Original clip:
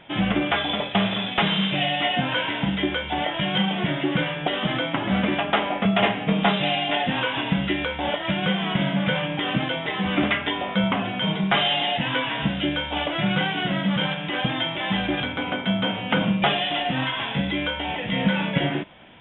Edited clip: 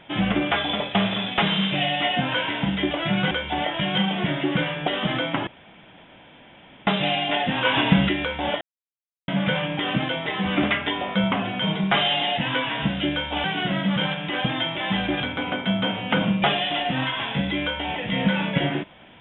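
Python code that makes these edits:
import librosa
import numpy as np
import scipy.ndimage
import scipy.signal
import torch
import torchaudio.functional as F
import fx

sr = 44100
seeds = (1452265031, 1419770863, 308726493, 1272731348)

y = fx.edit(x, sr, fx.room_tone_fill(start_s=5.07, length_s=1.4),
    fx.clip_gain(start_s=7.25, length_s=0.44, db=5.5),
    fx.silence(start_s=8.21, length_s=0.67),
    fx.move(start_s=13.04, length_s=0.4, to_s=2.91), tone=tone)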